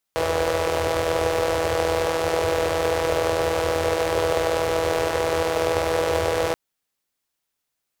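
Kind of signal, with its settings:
pulse-train model of a four-cylinder engine, steady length 6.38 s, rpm 4,900, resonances 85/490 Hz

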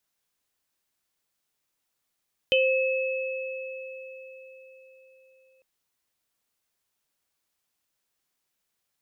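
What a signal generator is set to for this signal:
inharmonic partials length 3.10 s, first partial 524 Hz, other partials 2,590/3,050 Hz, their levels −3.5/0 dB, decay 4.54 s, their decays 4.15/0.25 s, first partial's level −19.5 dB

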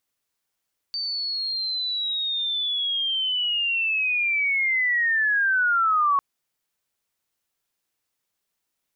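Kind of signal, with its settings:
glide linear 4,600 Hz → 1,100 Hz −25.5 dBFS → −17 dBFS 5.25 s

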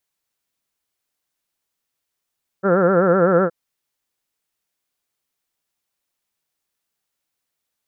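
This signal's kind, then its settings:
vowel by formant synthesis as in heard, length 0.87 s, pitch 185 Hz, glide −0.5 semitones, vibrato 7.9 Hz, vibrato depth 1.3 semitones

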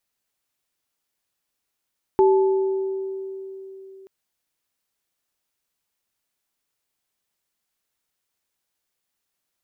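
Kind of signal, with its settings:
inharmonic partials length 1.88 s, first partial 385 Hz, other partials 868 Hz, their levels −7 dB, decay 3.68 s, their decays 1.54 s, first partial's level −12 dB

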